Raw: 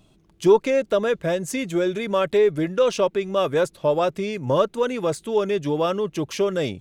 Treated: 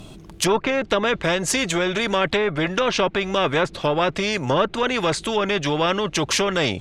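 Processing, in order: treble ducked by the level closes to 1900 Hz, closed at -15.5 dBFS; spectral compressor 2:1

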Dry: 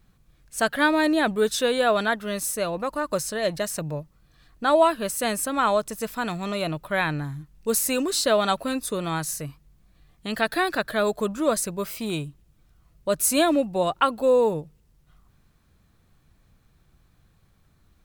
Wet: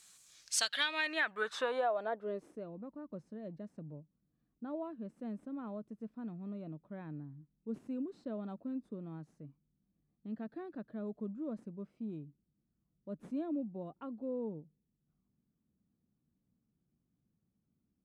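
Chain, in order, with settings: tracing distortion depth 0.03 ms; differentiator; low-pass sweep 7700 Hz -> 230 Hz, 0.22–2.74; compressor 8:1, threshold -43 dBFS, peak gain reduction 17 dB; gain +13 dB

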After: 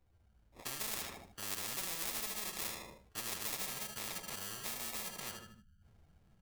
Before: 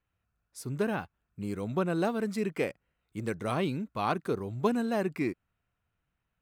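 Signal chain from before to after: Wiener smoothing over 25 samples; spectral delete 3.55–5.82, 240–3000 Hz; limiter -28 dBFS, peak gain reduction 10.5 dB; AGC gain up to 6 dB; in parallel at -5 dB: hard clip -34 dBFS, distortion -7 dB; on the sum: chorus voices 6, 1.2 Hz, delay 12 ms, depth 3 ms; sample-rate reducer 1500 Hz, jitter 0%; wow and flutter 22 cents; feedback echo 77 ms, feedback 36%, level -10.5 dB; spectral compressor 10:1; gain -1 dB

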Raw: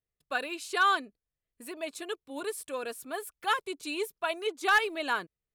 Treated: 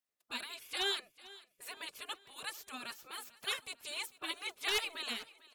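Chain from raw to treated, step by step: spectral gate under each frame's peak -15 dB weak; feedback echo 0.446 s, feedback 50%, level -19.5 dB; gain +2 dB

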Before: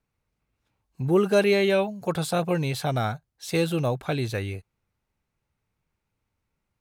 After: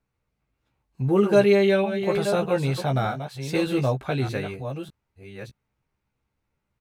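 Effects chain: reverse delay 0.611 s, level -8.5 dB; high shelf 5100 Hz -7.5 dB; doubler 15 ms -5 dB

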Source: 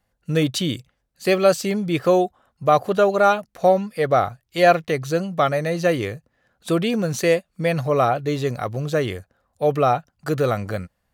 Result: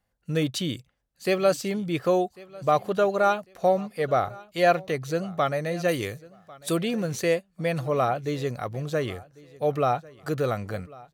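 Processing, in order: 5.88–6.77 high shelf 4300 Hz +11.5 dB; on a send: feedback echo 1.097 s, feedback 26%, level -22 dB; on the sum: gain -5.5 dB

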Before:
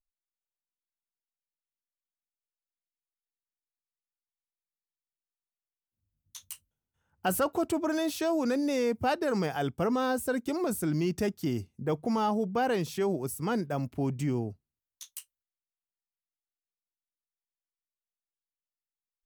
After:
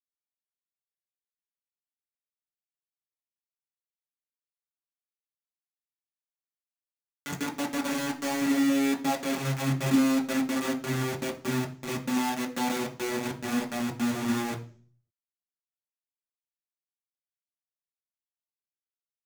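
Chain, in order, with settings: vocoder on a gliding note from F3, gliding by -9 st; spectral delete 7.16–7.58, 550–1200 Hz; in parallel at -1 dB: level quantiser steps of 24 dB; on the sum: bit-crush 5-bit; reverb RT60 0.45 s, pre-delay 3 ms, DRR 0 dB; gain -1.5 dB

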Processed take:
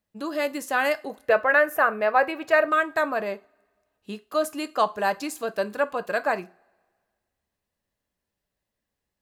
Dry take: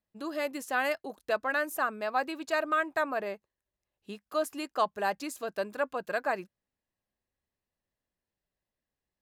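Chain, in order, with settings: 1.25–2.68 graphic EQ 125/250/500/2000/4000/8000 Hz +9/-6/+7/+7/-6/-8 dB; two-slope reverb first 0.3 s, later 1.8 s, from -27 dB, DRR 11.5 dB; gain +5.5 dB

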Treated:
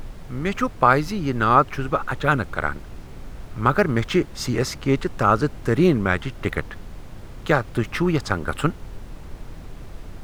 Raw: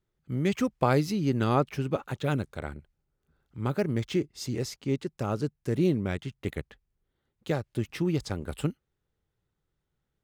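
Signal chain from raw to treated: bell 1300 Hz +14.5 dB 1.3 oct; AGC gain up to 9 dB; added noise brown -33 dBFS; gain -1 dB

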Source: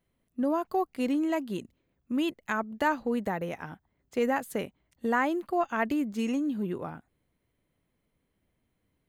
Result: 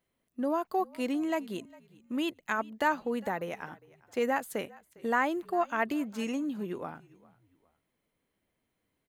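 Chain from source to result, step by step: low shelf 200 Hz -11 dB; on a send: frequency-shifting echo 0.404 s, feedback 35%, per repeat -43 Hz, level -23 dB

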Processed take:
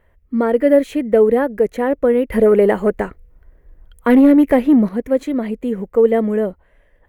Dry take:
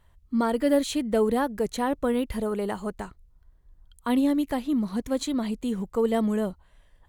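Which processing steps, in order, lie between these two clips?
2.32–4.89 sine folder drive 4 dB, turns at -13 dBFS; ten-band EQ 125 Hz -3 dB, 250 Hz +3 dB, 500 Hz +11 dB, 1000 Hz -4 dB, 2000 Hz +10 dB, 4000 Hz -11 dB, 8000 Hz -9 dB; gain +2 dB

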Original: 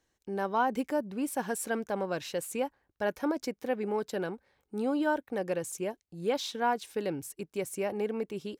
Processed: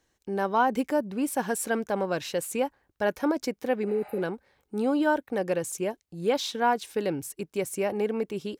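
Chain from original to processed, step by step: spectral repair 3.91–4.2, 560–9700 Hz before; gain +4.5 dB

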